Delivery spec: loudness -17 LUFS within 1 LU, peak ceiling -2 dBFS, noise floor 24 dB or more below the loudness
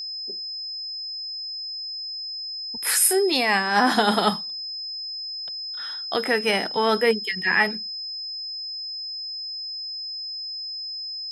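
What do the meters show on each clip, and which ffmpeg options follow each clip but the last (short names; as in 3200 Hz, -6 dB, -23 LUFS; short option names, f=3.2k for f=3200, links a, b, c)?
steady tone 5100 Hz; tone level -30 dBFS; loudness -24.5 LUFS; peak -5.0 dBFS; loudness target -17.0 LUFS
-> -af "bandreject=f=5.1k:w=30"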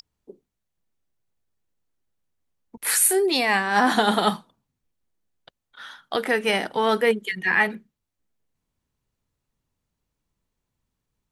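steady tone none; loudness -21.5 LUFS; peak -5.0 dBFS; loudness target -17.0 LUFS
-> -af "volume=4.5dB,alimiter=limit=-2dB:level=0:latency=1"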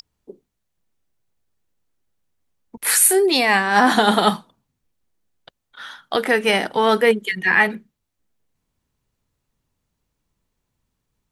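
loudness -17.0 LUFS; peak -2.0 dBFS; noise floor -77 dBFS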